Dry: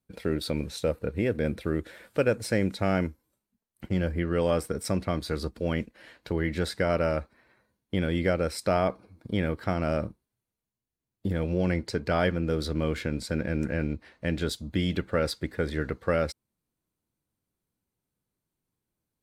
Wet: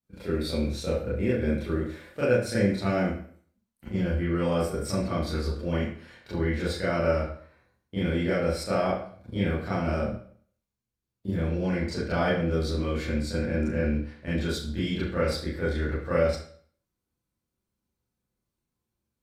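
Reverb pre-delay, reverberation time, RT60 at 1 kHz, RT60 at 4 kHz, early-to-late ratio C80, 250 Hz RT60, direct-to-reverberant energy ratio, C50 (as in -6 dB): 26 ms, 0.55 s, 0.50 s, 0.45 s, 6.5 dB, 0.50 s, -11.0 dB, 2.0 dB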